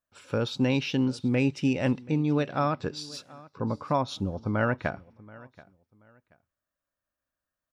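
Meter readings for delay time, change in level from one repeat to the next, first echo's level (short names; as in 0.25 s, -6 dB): 0.73 s, -11.5 dB, -21.5 dB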